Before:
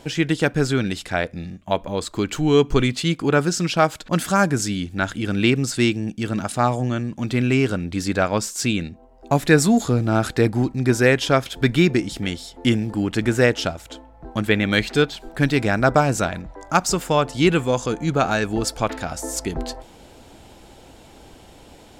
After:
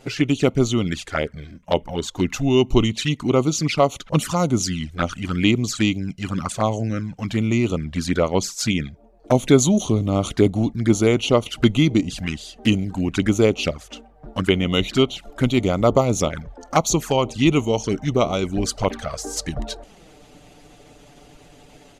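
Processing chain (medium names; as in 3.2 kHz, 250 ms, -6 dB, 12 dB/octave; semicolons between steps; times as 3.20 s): pitch shift -2 st; touch-sensitive flanger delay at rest 8.2 ms, full sweep at -17 dBFS; harmonic-percussive split harmonic -5 dB; trim +4 dB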